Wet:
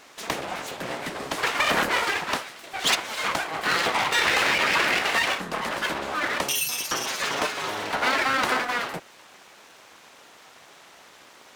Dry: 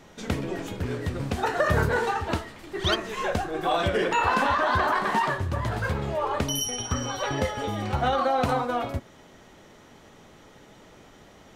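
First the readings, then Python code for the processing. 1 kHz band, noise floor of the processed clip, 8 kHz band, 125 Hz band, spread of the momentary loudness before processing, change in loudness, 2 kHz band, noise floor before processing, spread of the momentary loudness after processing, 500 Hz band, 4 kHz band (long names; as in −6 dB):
−1.0 dB, −51 dBFS, +5.5 dB, −14.0 dB, 9 LU, +2.0 dB, +6.0 dB, −52 dBFS, 11 LU, −4.0 dB, +6.5 dB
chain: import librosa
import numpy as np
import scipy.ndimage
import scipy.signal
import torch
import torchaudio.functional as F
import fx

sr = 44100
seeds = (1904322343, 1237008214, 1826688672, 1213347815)

y = np.abs(x)
y = fx.highpass(y, sr, hz=670.0, slope=6)
y = F.gain(torch.from_numpy(y), 7.5).numpy()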